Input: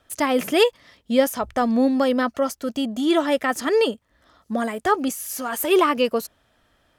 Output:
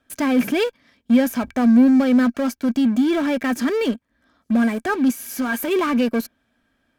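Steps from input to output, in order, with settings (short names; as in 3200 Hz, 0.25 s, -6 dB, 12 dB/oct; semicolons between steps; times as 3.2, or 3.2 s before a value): dynamic EQ 8500 Hz, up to -6 dB, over -45 dBFS, Q 1.2; in parallel at -10 dB: fuzz box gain 34 dB, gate -41 dBFS; on the sum: small resonant body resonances 240/1600/2300 Hz, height 13 dB, ringing for 45 ms; gain -8 dB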